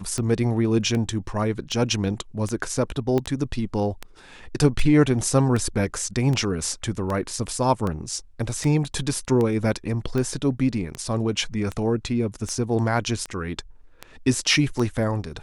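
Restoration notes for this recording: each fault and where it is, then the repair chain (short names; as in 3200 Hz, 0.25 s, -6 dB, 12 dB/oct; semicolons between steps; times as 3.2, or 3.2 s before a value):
tick 78 rpm -15 dBFS
3.18 pop -13 dBFS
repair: de-click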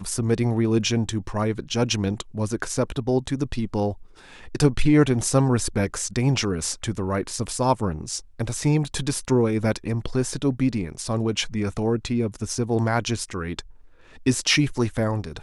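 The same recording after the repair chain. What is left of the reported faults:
3.18 pop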